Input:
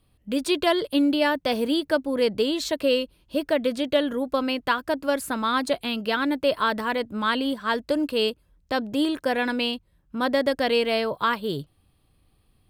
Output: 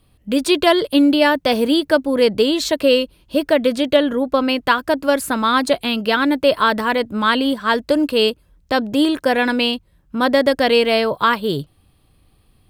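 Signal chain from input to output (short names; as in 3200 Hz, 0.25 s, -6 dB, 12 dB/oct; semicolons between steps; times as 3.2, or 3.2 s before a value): 3.96–4.49 high shelf 5100 Hz -7 dB; gain +7.5 dB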